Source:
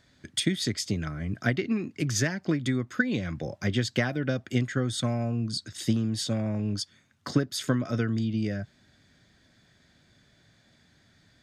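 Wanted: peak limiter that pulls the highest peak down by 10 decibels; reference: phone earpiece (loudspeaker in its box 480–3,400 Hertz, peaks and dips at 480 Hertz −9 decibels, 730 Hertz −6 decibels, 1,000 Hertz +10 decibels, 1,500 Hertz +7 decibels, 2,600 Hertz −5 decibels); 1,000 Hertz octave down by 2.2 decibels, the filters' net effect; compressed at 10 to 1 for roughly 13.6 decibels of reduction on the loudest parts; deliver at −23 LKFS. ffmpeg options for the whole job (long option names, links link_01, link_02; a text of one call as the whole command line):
ffmpeg -i in.wav -af "equalizer=frequency=1000:width_type=o:gain=-8.5,acompressor=threshold=-35dB:ratio=10,alimiter=level_in=8.5dB:limit=-24dB:level=0:latency=1,volume=-8.5dB,highpass=480,equalizer=frequency=480:width_type=q:width=4:gain=-9,equalizer=frequency=730:width_type=q:width=4:gain=-6,equalizer=frequency=1000:width_type=q:width=4:gain=10,equalizer=frequency=1500:width_type=q:width=4:gain=7,equalizer=frequency=2600:width_type=q:width=4:gain=-5,lowpass=frequency=3400:width=0.5412,lowpass=frequency=3400:width=1.3066,volume=27dB" out.wav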